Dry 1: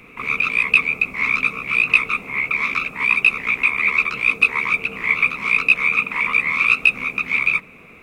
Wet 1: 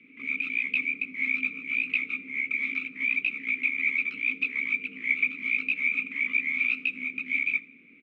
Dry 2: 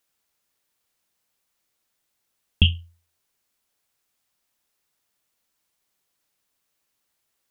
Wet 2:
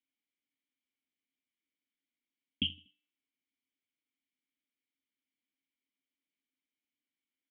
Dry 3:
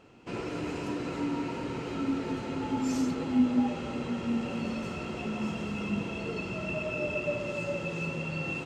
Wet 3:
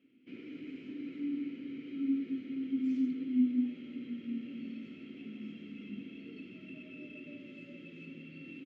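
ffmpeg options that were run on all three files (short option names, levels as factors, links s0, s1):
-filter_complex "[0:a]highpass=65,aecho=1:1:80|160|240:0.0668|0.0294|0.0129,adynamicsmooth=sensitivity=4.5:basefreq=6100,asplit=3[s0][s1][s2];[s0]bandpass=f=270:t=q:w=8,volume=1[s3];[s1]bandpass=f=2290:t=q:w=8,volume=0.501[s4];[s2]bandpass=f=3010:t=q:w=8,volume=0.355[s5];[s3][s4][s5]amix=inputs=3:normalize=0,bandreject=f=297.2:t=h:w=4,bandreject=f=594.4:t=h:w=4,bandreject=f=891.6:t=h:w=4,bandreject=f=1188.8:t=h:w=4,bandreject=f=1486:t=h:w=4,bandreject=f=1783.2:t=h:w=4,bandreject=f=2080.4:t=h:w=4,bandreject=f=2377.6:t=h:w=4,bandreject=f=2674.8:t=h:w=4,bandreject=f=2972:t=h:w=4,bandreject=f=3269.2:t=h:w=4,bandreject=f=3566.4:t=h:w=4,bandreject=f=3863.6:t=h:w=4,bandreject=f=4160.8:t=h:w=4,bandreject=f=4458:t=h:w=4,bandreject=f=4755.2:t=h:w=4,bandreject=f=5052.4:t=h:w=4,bandreject=f=5349.6:t=h:w=4,bandreject=f=5646.8:t=h:w=4,bandreject=f=5944:t=h:w=4,bandreject=f=6241.2:t=h:w=4,bandreject=f=6538.4:t=h:w=4,bandreject=f=6835.6:t=h:w=4,bandreject=f=7132.8:t=h:w=4,bandreject=f=7430:t=h:w=4,bandreject=f=7727.2:t=h:w=4,bandreject=f=8024.4:t=h:w=4,bandreject=f=8321.6:t=h:w=4,bandreject=f=8618.8:t=h:w=4,bandreject=f=8916:t=h:w=4,bandreject=f=9213.2:t=h:w=4,bandreject=f=9510.4:t=h:w=4,bandreject=f=9807.6:t=h:w=4"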